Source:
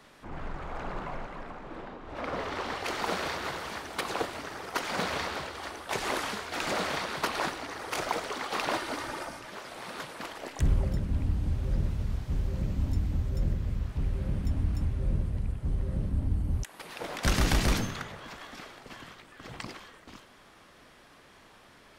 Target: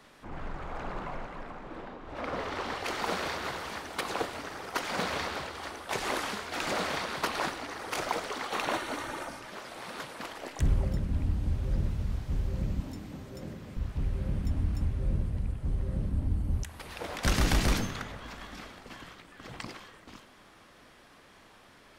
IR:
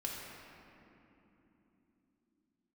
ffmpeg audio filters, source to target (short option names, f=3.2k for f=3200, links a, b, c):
-filter_complex "[0:a]asettb=1/sr,asplit=3[a][b][c];[a]atrim=end=8.504[d];[b]atrim=start=8.5:end=9.29,asetpts=PTS-STARTPTS,afade=t=in:d=0.004:c=qsin,afade=t=out:st=0.786:d=0.004:c=qsin,bandreject=f=4.9k:w=6.4[e];[c]atrim=start=9.286[f];[d][e]acrossfade=d=0.004:c1=hsin:c2=qsin[g];[g][f]acrossfade=d=0.004:c1=qsin:c2=hsin,asettb=1/sr,asplit=3[h][i][j];[h]atrim=end=12.804[k];[i]atrim=start=12.8:end=13.77,asetpts=PTS-STARTPTS,afade=t=in:d=0.004:c=qsin,afade=t=out:st=0.966:d=0.004:c=qsin,highpass=220[l];[j]atrim=start=13.766[m];[k][l]acrossfade=d=0.004:c1=hsin:c2=qsin[n];[n][m]acrossfade=d=0.004:c1=qsin:c2=hsin,asplit=2[o][p];[1:a]atrim=start_sample=2205[q];[p][q]afir=irnorm=-1:irlink=0,volume=-17dB[r];[o][r]amix=inputs=2:normalize=0,volume=-1.5dB"